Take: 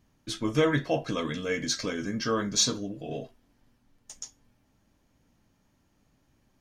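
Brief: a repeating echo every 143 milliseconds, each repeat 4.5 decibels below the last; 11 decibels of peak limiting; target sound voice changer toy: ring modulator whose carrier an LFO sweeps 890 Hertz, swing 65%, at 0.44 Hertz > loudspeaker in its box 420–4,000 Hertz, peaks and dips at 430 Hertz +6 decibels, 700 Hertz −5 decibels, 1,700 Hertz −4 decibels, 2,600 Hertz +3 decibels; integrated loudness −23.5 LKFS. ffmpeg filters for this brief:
ffmpeg -i in.wav -af "alimiter=limit=-22dB:level=0:latency=1,aecho=1:1:143|286|429|572|715|858|1001|1144|1287:0.596|0.357|0.214|0.129|0.0772|0.0463|0.0278|0.0167|0.01,aeval=exprs='val(0)*sin(2*PI*890*n/s+890*0.65/0.44*sin(2*PI*0.44*n/s))':channel_layout=same,highpass=420,equalizer=frequency=430:width_type=q:width=4:gain=6,equalizer=frequency=700:width_type=q:width=4:gain=-5,equalizer=frequency=1700:width_type=q:width=4:gain=-4,equalizer=frequency=2600:width_type=q:width=4:gain=3,lowpass=frequency=4000:width=0.5412,lowpass=frequency=4000:width=1.3066,volume=12dB" out.wav

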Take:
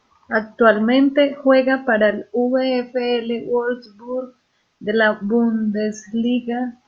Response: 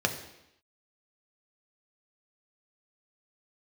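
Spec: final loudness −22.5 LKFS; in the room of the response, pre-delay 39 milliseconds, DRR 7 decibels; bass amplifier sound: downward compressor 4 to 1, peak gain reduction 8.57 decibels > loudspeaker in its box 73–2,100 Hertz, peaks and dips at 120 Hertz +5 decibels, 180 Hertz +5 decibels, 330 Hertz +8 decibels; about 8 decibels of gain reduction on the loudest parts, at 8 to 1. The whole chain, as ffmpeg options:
-filter_complex "[0:a]acompressor=threshold=-17dB:ratio=8,asplit=2[link_01][link_02];[1:a]atrim=start_sample=2205,adelay=39[link_03];[link_02][link_03]afir=irnorm=-1:irlink=0,volume=-17dB[link_04];[link_01][link_04]amix=inputs=2:normalize=0,acompressor=threshold=-24dB:ratio=4,highpass=frequency=73:width=0.5412,highpass=frequency=73:width=1.3066,equalizer=frequency=120:width_type=q:width=4:gain=5,equalizer=frequency=180:width_type=q:width=4:gain=5,equalizer=frequency=330:width_type=q:width=4:gain=8,lowpass=frequency=2100:width=0.5412,lowpass=frequency=2100:width=1.3066,volume=4dB"

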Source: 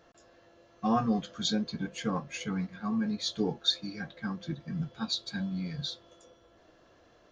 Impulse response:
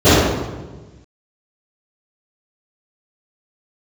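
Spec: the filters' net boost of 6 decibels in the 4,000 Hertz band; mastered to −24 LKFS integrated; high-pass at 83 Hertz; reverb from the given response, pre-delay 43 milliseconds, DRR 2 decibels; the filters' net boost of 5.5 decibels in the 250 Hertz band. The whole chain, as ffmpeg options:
-filter_complex "[0:a]highpass=83,equalizer=frequency=250:width_type=o:gain=7,equalizer=frequency=4000:width_type=o:gain=6.5,asplit=2[link_01][link_02];[1:a]atrim=start_sample=2205,adelay=43[link_03];[link_02][link_03]afir=irnorm=-1:irlink=0,volume=-34dB[link_04];[link_01][link_04]amix=inputs=2:normalize=0,volume=-1dB"

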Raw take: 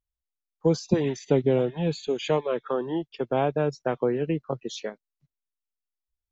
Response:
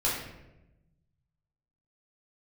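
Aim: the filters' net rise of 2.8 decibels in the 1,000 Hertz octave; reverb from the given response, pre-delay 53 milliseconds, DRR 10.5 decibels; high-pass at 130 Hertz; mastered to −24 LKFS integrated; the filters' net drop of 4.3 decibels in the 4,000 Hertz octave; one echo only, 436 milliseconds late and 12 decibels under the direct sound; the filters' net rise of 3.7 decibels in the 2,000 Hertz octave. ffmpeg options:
-filter_complex "[0:a]highpass=130,equalizer=frequency=1000:width_type=o:gain=3,equalizer=frequency=2000:width_type=o:gain=6,equalizer=frequency=4000:width_type=o:gain=-8.5,aecho=1:1:436:0.251,asplit=2[link_01][link_02];[1:a]atrim=start_sample=2205,adelay=53[link_03];[link_02][link_03]afir=irnorm=-1:irlink=0,volume=-20dB[link_04];[link_01][link_04]amix=inputs=2:normalize=0,volume=1.5dB"

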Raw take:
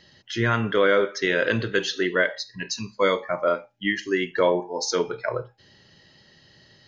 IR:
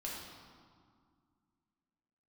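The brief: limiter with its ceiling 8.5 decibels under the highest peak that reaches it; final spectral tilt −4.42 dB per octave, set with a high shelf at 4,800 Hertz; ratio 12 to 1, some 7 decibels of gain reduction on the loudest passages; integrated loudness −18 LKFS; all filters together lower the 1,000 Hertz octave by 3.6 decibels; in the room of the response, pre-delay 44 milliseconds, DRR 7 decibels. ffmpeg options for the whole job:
-filter_complex "[0:a]equalizer=frequency=1000:width_type=o:gain=-4.5,highshelf=frequency=4800:gain=-7,acompressor=threshold=-23dB:ratio=12,alimiter=limit=-20.5dB:level=0:latency=1,asplit=2[link_01][link_02];[1:a]atrim=start_sample=2205,adelay=44[link_03];[link_02][link_03]afir=irnorm=-1:irlink=0,volume=-7.5dB[link_04];[link_01][link_04]amix=inputs=2:normalize=0,volume=13.5dB"

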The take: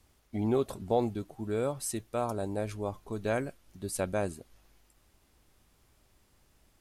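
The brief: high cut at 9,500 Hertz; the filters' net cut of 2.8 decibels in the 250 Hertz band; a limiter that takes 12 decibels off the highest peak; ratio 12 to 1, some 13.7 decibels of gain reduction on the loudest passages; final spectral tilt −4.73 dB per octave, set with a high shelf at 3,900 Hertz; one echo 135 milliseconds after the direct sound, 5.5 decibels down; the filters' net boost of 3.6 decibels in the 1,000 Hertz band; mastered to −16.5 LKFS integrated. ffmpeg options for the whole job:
ffmpeg -i in.wav -af "lowpass=9500,equalizer=frequency=250:width_type=o:gain=-4,equalizer=frequency=1000:width_type=o:gain=5,highshelf=frequency=3900:gain=8,acompressor=threshold=-34dB:ratio=12,alimiter=level_in=12dB:limit=-24dB:level=0:latency=1,volume=-12dB,aecho=1:1:135:0.531,volume=29.5dB" out.wav

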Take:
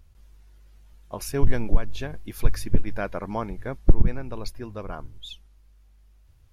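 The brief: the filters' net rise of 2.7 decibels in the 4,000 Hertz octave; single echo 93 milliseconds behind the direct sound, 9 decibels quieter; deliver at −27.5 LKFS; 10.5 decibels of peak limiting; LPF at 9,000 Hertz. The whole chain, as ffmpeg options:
ffmpeg -i in.wav -af "lowpass=9000,equalizer=frequency=4000:width_type=o:gain=3.5,alimiter=limit=-12.5dB:level=0:latency=1,aecho=1:1:93:0.355,volume=5dB" out.wav

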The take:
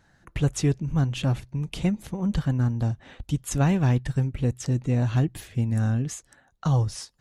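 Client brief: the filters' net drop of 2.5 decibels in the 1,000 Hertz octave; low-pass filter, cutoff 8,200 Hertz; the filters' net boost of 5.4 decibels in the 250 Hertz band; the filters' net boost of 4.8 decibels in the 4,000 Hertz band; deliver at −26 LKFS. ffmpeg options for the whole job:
ffmpeg -i in.wav -af "lowpass=8200,equalizer=frequency=250:width_type=o:gain=7.5,equalizer=frequency=1000:width_type=o:gain=-4.5,equalizer=frequency=4000:width_type=o:gain=7,volume=-3dB" out.wav

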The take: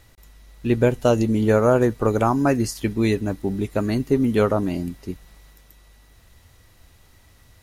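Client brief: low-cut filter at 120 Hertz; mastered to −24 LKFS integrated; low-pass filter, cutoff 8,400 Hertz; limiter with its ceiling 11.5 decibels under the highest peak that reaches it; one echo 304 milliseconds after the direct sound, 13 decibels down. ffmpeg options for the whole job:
ffmpeg -i in.wav -af "highpass=120,lowpass=8400,alimiter=limit=-15.5dB:level=0:latency=1,aecho=1:1:304:0.224,volume=2.5dB" out.wav

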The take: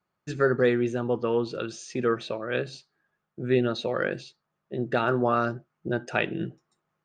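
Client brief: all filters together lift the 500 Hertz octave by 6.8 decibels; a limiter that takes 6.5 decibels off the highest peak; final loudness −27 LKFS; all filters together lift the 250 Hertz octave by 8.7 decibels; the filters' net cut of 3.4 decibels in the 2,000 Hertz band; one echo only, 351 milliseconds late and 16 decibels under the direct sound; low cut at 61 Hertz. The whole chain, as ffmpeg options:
ffmpeg -i in.wav -af "highpass=61,equalizer=frequency=250:width_type=o:gain=9,equalizer=frequency=500:width_type=o:gain=5.5,equalizer=frequency=2000:width_type=o:gain=-5.5,alimiter=limit=-11.5dB:level=0:latency=1,aecho=1:1:351:0.158,volume=-3.5dB" out.wav

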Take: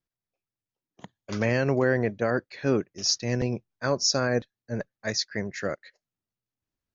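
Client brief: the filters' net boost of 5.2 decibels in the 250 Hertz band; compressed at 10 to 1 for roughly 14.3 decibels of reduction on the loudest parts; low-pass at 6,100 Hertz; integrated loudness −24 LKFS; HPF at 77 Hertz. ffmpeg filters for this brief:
ffmpeg -i in.wav -af "highpass=77,lowpass=6100,equalizer=frequency=250:width_type=o:gain=6,acompressor=threshold=-30dB:ratio=10,volume=11.5dB" out.wav

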